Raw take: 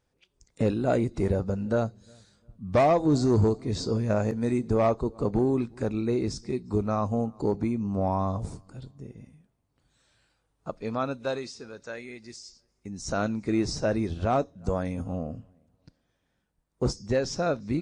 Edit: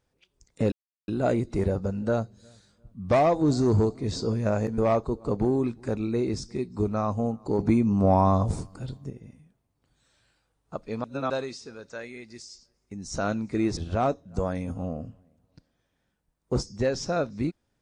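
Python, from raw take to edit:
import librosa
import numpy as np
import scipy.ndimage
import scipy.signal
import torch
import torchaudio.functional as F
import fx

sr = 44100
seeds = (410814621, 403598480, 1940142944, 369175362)

y = fx.edit(x, sr, fx.insert_silence(at_s=0.72, length_s=0.36),
    fx.cut(start_s=4.42, length_s=0.3),
    fx.clip_gain(start_s=7.53, length_s=1.51, db=6.5),
    fx.reverse_span(start_s=10.98, length_s=0.26),
    fx.cut(start_s=13.71, length_s=0.36), tone=tone)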